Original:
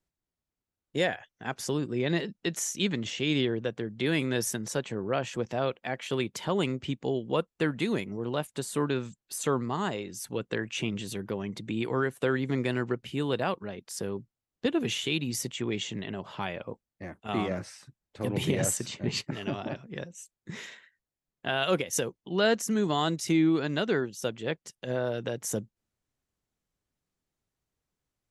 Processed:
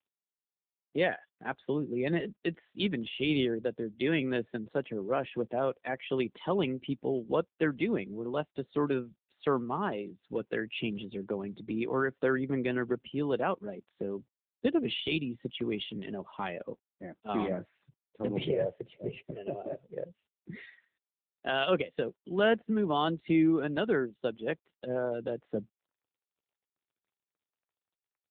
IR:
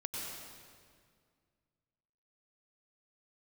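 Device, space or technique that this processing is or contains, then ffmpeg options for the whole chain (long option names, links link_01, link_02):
mobile call with aggressive noise cancelling: -filter_complex "[0:a]asettb=1/sr,asplit=3[link_01][link_02][link_03];[link_01]atrim=end=18.484[link_04];[link_02]atrim=start=18.48:end=20.06,asetpts=PTS-STARTPTS,afade=type=in:duration=0.004:curve=qsin,afade=type=out:start_time=1.576:duration=0.004:curve=qsin,equalizer=frequency=250:width_type=o:width=1:gain=-12,equalizer=frequency=500:width_type=o:width=1:gain=9,equalizer=frequency=1000:width_type=o:width=1:gain=-10,equalizer=frequency=4000:width_type=o:width=1:gain=-12,equalizer=frequency=8000:width_type=o:width=1:gain=4[link_05];[link_03]atrim=start=20.056[link_06];[link_04][link_05]acrossfade=duration=0.004:curve1=hsin:curve2=qsin[link_07];[link_07][link_06]acrossfade=duration=0.004:curve1=qsin:curve2=hsin,highpass=170,afftdn=noise_reduction=14:noise_floor=-40" -ar 8000 -c:a libopencore_amrnb -b:a 7950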